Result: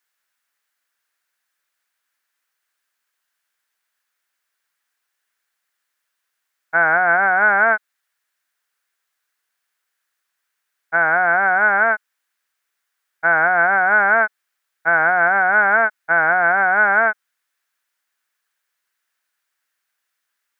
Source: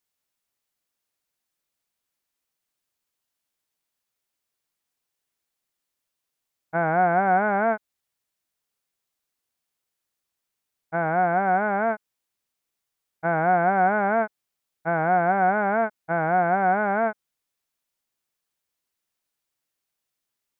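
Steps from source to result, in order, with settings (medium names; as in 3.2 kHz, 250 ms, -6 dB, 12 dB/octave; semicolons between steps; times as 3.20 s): high-pass 730 Hz 6 dB/octave; peak limiter -17 dBFS, peak gain reduction 4.5 dB; peaking EQ 1.6 kHz +12.5 dB 0.9 oct; trim +4.5 dB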